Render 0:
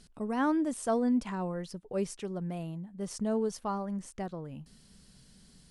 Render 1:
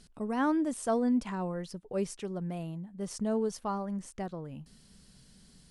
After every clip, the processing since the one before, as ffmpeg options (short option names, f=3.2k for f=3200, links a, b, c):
-af anull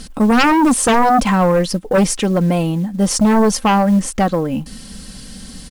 -af "aecho=1:1:3.8:0.53,aeval=exprs='0.15*sin(PI/2*3.55*val(0)/0.15)':c=same,acrusher=bits=8:mode=log:mix=0:aa=0.000001,volume=8dB"